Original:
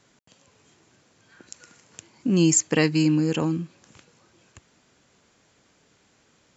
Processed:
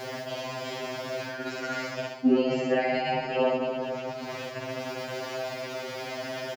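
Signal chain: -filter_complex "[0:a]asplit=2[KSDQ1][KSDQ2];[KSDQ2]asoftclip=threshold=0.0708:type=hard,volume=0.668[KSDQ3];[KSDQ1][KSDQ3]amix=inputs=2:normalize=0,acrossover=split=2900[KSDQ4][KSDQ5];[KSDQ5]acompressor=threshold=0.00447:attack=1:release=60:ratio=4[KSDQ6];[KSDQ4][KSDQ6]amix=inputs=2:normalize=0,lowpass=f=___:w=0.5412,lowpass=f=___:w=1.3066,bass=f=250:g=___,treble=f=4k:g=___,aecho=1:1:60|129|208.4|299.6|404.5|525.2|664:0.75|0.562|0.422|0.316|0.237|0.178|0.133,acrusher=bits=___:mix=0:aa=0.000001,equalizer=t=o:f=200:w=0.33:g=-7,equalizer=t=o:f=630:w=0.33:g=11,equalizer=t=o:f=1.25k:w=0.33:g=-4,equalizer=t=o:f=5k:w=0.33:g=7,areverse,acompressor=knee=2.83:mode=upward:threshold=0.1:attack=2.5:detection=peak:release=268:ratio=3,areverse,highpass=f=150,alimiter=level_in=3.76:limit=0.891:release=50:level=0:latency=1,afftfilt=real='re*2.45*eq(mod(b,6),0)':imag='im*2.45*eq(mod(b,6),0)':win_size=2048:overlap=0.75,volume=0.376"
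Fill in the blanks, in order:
6.3k, 6.3k, -3, -12, 11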